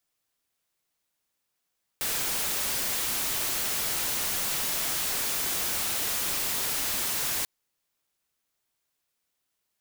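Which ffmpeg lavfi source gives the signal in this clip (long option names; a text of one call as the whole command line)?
ffmpeg -f lavfi -i "anoisesrc=color=white:amplitude=0.0614:duration=5.44:sample_rate=44100:seed=1" out.wav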